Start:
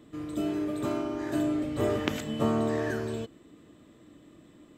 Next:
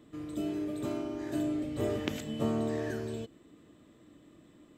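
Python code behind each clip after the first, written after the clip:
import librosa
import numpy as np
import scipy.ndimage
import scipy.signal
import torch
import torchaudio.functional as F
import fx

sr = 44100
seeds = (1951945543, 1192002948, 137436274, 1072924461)

y = fx.dynamic_eq(x, sr, hz=1200.0, q=1.1, threshold_db=-48.0, ratio=4.0, max_db=-6)
y = F.gain(torch.from_numpy(y), -3.5).numpy()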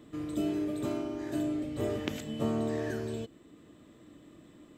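y = fx.rider(x, sr, range_db=10, speed_s=2.0)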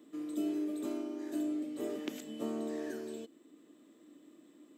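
y = fx.ladder_highpass(x, sr, hz=230.0, resonance_pct=45)
y = fx.high_shelf(y, sr, hz=5300.0, db=9.0)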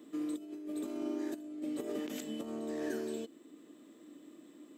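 y = fx.over_compress(x, sr, threshold_db=-39.0, ratio=-0.5)
y = F.gain(torch.from_numpy(y), 1.5).numpy()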